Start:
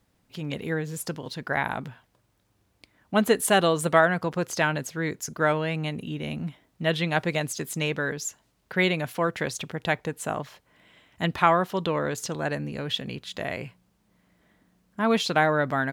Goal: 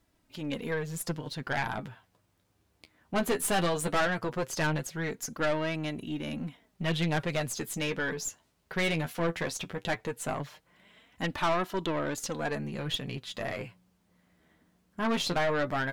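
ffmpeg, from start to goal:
-af "flanger=delay=3:depth=9.6:regen=32:speed=0.17:shape=sinusoidal,aeval=exprs='(tanh(20*val(0)+0.4)-tanh(0.4))/20':c=same,volume=1.41"

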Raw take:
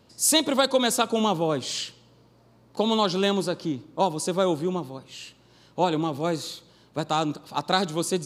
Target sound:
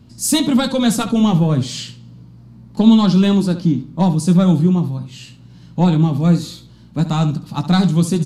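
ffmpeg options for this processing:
-filter_complex "[0:a]acontrast=83,flanger=delay=2.7:depth=6.2:regen=-54:speed=0.3:shape=triangular,lowshelf=f=290:t=q:w=1.5:g=14,asplit=2[s0][s1];[s1]aecho=0:1:17|70:0.299|0.237[s2];[s0][s2]amix=inputs=2:normalize=0,volume=0.891"

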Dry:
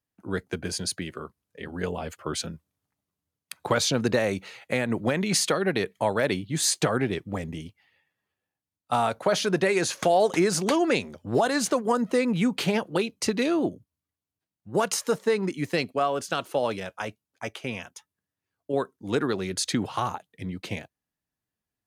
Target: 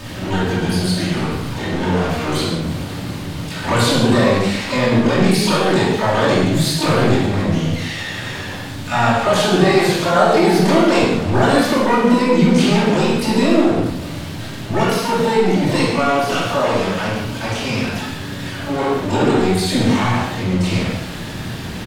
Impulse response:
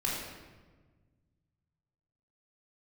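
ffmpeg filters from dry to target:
-filter_complex "[0:a]aeval=exprs='val(0)+0.5*0.0447*sgn(val(0))':c=same,highshelf=f=5900:t=q:w=1.5:g=-12,aecho=1:1:281|562|843:0.133|0.056|0.0235,asplit=2[s0][s1];[s1]asetrate=88200,aresample=44100,atempo=0.5,volume=0.562[s2];[s0][s2]amix=inputs=2:normalize=0,equalizer=f=150:w=0.44:g=4[s3];[1:a]atrim=start_sample=2205,afade=t=out:st=0.22:d=0.01,atrim=end_sample=10143,asetrate=33516,aresample=44100[s4];[s3][s4]afir=irnorm=-1:irlink=0,volume=0.668"

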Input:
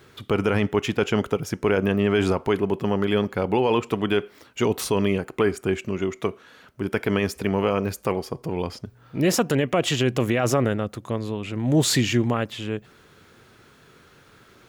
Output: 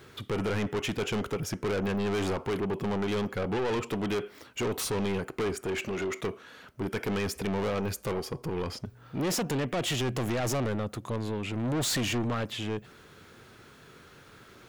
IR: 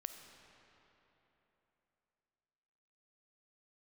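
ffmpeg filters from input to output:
-filter_complex "[0:a]asoftclip=type=tanh:threshold=0.0473,asettb=1/sr,asplit=3[s0][s1][s2];[s0]atrim=end=5.654[s3];[s1]atrim=start=5.65:end=6.21,asetpts=PTS-STARTPTS,afade=t=in:d=0.004:c=qsin,afade=t=out:st=0.556:d=0.004:c=qsin,asplit=2[s4][s5];[s5]highpass=f=720:p=1,volume=6.31,asoftclip=type=tanh:threshold=0.0473[s6];[s4][s6]amix=inputs=2:normalize=0,lowpass=f=6300:p=1,volume=0.501[s7];[s2]atrim=start=6.206[s8];[s3][s7]acrossfade=d=0.004:c1=hsin:c2=qsin[s9];[s9][s8]acrossfade=d=0.004:c1=qsin:c2=hsin"

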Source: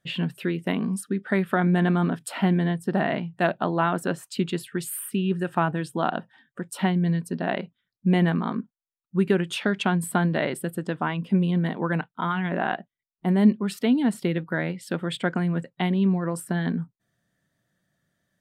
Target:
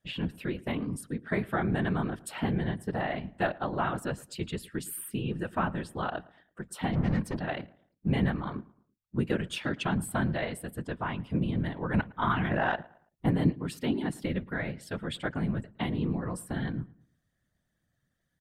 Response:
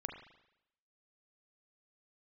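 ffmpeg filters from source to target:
-filter_complex "[0:a]asettb=1/sr,asplit=3[s0][s1][s2];[s0]atrim=end=6.934[s3];[s1]atrim=start=6.93:end=7.4,asetpts=PTS-STARTPTS,afade=t=in:d=0.004:c=qsin,afade=t=out:st=0.466:d=0.004:c=qsin,asplit=2[s4][s5];[s5]highpass=f=720:p=1,volume=20,asoftclip=type=tanh:threshold=0.178[s6];[s4][s6]amix=inputs=2:normalize=0,lowpass=f=1500:p=1,volume=0.501[s7];[s2]atrim=start=7.396[s8];[s3][s7]acrossfade=d=0.004:c1=hsin:c2=qsin[s9];[s9][s8]acrossfade=d=0.004:c1=qsin:c2=hsin,asettb=1/sr,asplit=3[s10][s11][s12];[s10]atrim=end=11.944[s13];[s11]atrim=start=11.94:end=13.31,asetpts=PTS-STARTPTS,afade=t=in:d=0.004:c=qsin,afade=t=out:st=1.366:d=0.004:c=qsin,acontrast=34[s14];[s12]atrim=start=13.306[s15];[s13][s14]acrossfade=d=0.004:c1=hsin:c2=qsin[s16];[s16][s15]acrossfade=d=0.004:c1=qsin:c2=hsin,asubboost=boost=5.5:cutoff=93,afftfilt=real='hypot(re,im)*cos(2*PI*random(0))':imag='hypot(re,im)*sin(2*PI*random(1))':win_size=512:overlap=0.75,asplit=2[s17][s18];[s18]adelay=111,lowpass=f=2200:p=1,volume=0.0841,asplit=2[s19][s20];[s20]adelay=111,lowpass=f=2200:p=1,volume=0.38,asplit=2[s21][s22];[s22]adelay=111,lowpass=f=2200:p=1,volume=0.38[s23];[s19][s21][s23]amix=inputs=3:normalize=0[s24];[s17][s24]amix=inputs=2:normalize=0"

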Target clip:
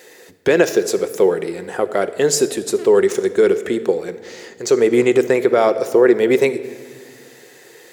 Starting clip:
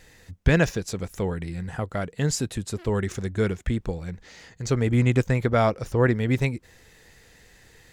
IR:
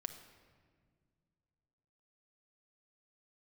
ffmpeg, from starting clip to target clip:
-filter_complex "[0:a]highpass=f=400:t=q:w=3.4,alimiter=limit=0.251:level=0:latency=1:release=58,asplit=2[s0][s1];[1:a]atrim=start_sample=2205,highshelf=f=9100:g=12[s2];[s1][s2]afir=irnorm=-1:irlink=0,volume=2[s3];[s0][s3]amix=inputs=2:normalize=0"

